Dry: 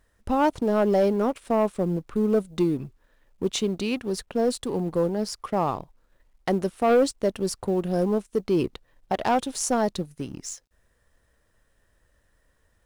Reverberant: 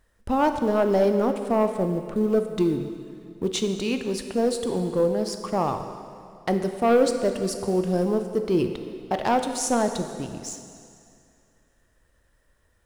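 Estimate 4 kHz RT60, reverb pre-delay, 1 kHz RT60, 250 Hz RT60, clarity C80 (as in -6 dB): 2.1 s, 7 ms, 2.4 s, 2.3 s, 9.0 dB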